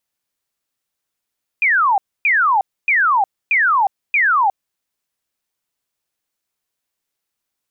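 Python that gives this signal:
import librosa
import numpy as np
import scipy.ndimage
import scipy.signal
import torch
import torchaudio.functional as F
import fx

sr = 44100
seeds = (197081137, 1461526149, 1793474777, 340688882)

y = fx.laser_zaps(sr, level_db=-11.5, start_hz=2500.0, end_hz=750.0, length_s=0.36, wave='sine', shots=5, gap_s=0.27)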